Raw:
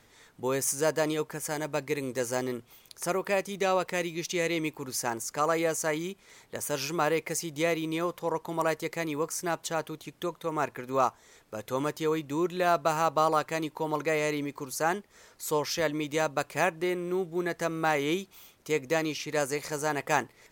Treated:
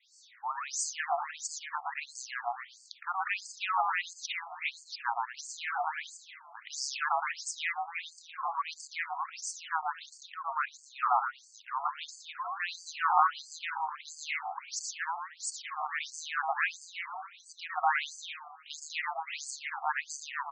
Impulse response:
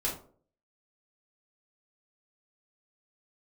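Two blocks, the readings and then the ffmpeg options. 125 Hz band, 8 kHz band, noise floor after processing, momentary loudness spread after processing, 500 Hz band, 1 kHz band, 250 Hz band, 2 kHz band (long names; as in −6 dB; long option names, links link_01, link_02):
below −40 dB, −3.5 dB, −58 dBFS, 13 LU, −19.5 dB, 0.0 dB, below −40 dB, −1.0 dB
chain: -filter_complex "[0:a]adynamicequalizer=threshold=0.00355:dfrequency=5400:dqfactor=1.1:tfrequency=5400:tqfactor=1.1:attack=5:release=100:ratio=0.375:range=3:mode=cutabove:tftype=bell,asplit=2[link_01][link_02];[link_02]asplit=6[link_03][link_04][link_05][link_06][link_07][link_08];[link_03]adelay=117,afreqshift=81,volume=-3dB[link_09];[link_04]adelay=234,afreqshift=162,volume=-9.2dB[link_10];[link_05]adelay=351,afreqshift=243,volume=-15.4dB[link_11];[link_06]adelay=468,afreqshift=324,volume=-21.6dB[link_12];[link_07]adelay=585,afreqshift=405,volume=-27.8dB[link_13];[link_08]adelay=702,afreqshift=486,volume=-34dB[link_14];[link_09][link_10][link_11][link_12][link_13][link_14]amix=inputs=6:normalize=0[link_15];[link_01][link_15]amix=inputs=2:normalize=0,afftfilt=real='re*between(b*sr/1024,940*pow(6300/940,0.5+0.5*sin(2*PI*1.5*pts/sr))/1.41,940*pow(6300/940,0.5+0.5*sin(2*PI*1.5*pts/sr))*1.41)':imag='im*between(b*sr/1024,940*pow(6300/940,0.5+0.5*sin(2*PI*1.5*pts/sr))/1.41,940*pow(6300/940,0.5+0.5*sin(2*PI*1.5*pts/sr))*1.41)':win_size=1024:overlap=0.75,volume=3dB"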